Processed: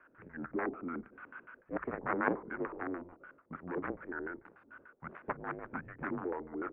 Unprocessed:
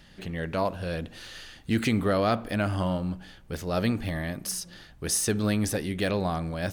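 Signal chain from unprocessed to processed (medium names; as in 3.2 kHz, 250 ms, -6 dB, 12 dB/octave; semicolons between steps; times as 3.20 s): Chebyshev shaper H 3 -7 dB, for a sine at -11.5 dBFS; LFO low-pass square 6.8 Hz 660–1700 Hz; mistuned SSB -270 Hz 480–2500 Hz; trim +3 dB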